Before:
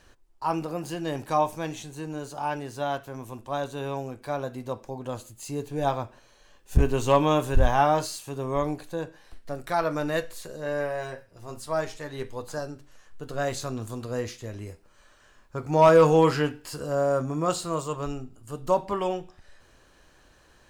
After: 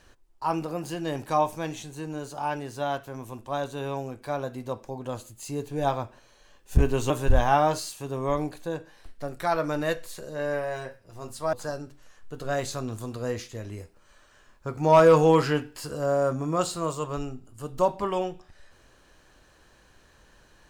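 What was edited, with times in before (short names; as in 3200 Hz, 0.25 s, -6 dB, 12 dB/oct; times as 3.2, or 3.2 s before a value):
7.1–7.37 cut
11.8–12.42 cut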